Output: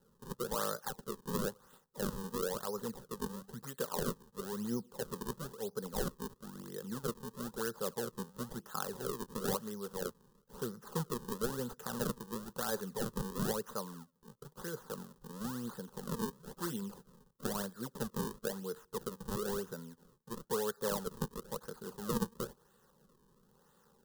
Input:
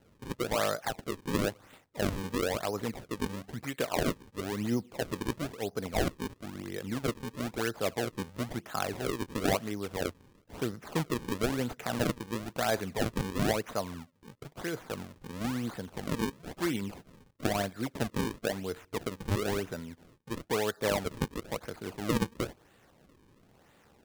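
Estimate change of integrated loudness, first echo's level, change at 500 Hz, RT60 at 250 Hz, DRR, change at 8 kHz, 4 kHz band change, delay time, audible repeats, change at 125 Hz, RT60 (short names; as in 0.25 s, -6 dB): -6.0 dB, none, -5.5 dB, none, none, -2.5 dB, -7.5 dB, none, none, -7.5 dB, none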